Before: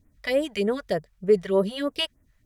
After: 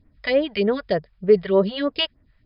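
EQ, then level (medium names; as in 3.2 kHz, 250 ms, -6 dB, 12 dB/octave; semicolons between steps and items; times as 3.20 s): brick-wall FIR low-pass 5.2 kHz; +4.0 dB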